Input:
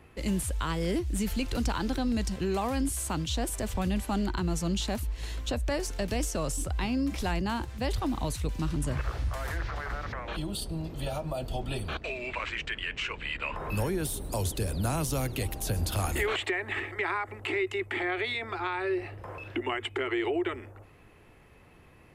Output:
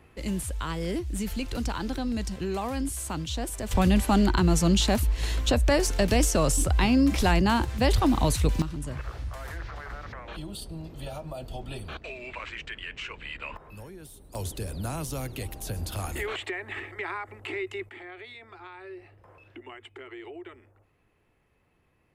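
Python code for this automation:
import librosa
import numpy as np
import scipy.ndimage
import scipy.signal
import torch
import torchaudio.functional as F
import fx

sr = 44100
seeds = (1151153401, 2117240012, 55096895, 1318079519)

y = fx.gain(x, sr, db=fx.steps((0.0, -1.0), (3.71, 8.0), (8.62, -4.0), (13.57, -14.5), (14.35, -3.5), (17.89, -13.0)))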